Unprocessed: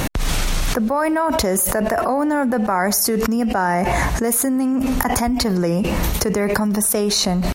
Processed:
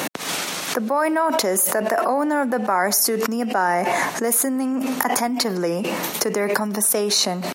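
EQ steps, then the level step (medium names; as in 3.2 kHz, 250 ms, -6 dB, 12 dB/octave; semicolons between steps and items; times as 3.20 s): Bessel high-pass 300 Hz, order 4; 0.0 dB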